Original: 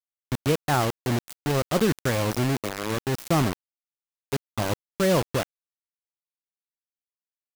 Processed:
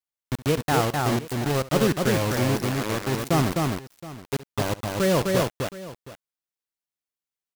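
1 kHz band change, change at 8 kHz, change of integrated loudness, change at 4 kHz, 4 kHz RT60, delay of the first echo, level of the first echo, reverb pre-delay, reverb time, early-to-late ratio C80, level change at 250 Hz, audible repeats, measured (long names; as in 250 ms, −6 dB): +2.0 dB, +2.0 dB, +1.5 dB, +2.0 dB, no reverb audible, 68 ms, −18.0 dB, no reverb audible, no reverb audible, no reverb audible, +2.0 dB, 3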